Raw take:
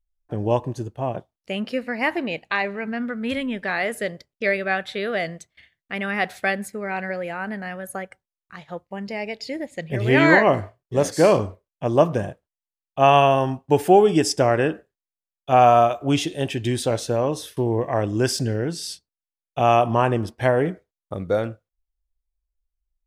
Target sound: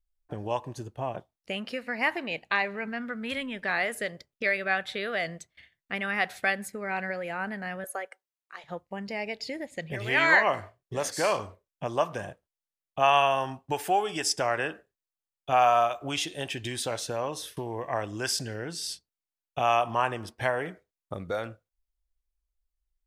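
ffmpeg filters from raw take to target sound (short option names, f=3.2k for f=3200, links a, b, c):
-filter_complex "[0:a]asettb=1/sr,asplit=3[a][b][c];[a]atrim=end=7.844[d];[b]atrim=start=7.84:end=8.64,asetpts=PTS-STARTPTS,afade=t=in:d=0.004:c=qsin,afade=t=out:st=0.796:d=0.004:c=qsin,highpass=f=390:w=0.5412,highpass=f=390:w=1.3066[e];[c]atrim=start=8.636[f];[d][e]acrossfade=d=0.004:c1=hsin:c2=qsin[g];[g][f]acrossfade=d=0.004:c1=qsin:c2=hsin,acrossover=split=730|6400[h][i][j];[h]acompressor=threshold=-32dB:ratio=10[k];[k][i][j]amix=inputs=3:normalize=0,volume=-2.5dB"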